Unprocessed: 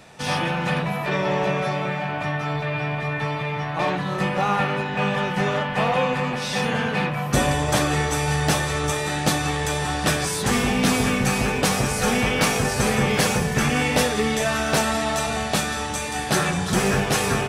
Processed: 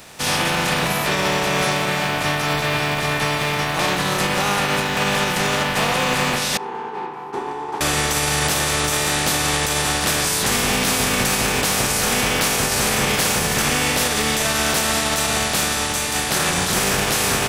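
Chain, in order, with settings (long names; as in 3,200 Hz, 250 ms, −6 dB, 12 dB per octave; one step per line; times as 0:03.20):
compressing power law on the bin magnitudes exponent 0.5
0:06.57–0:07.81: pair of resonant band-passes 590 Hz, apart 1.1 octaves
brickwall limiter −15.5 dBFS, peak gain reduction 9 dB
level +5.5 dB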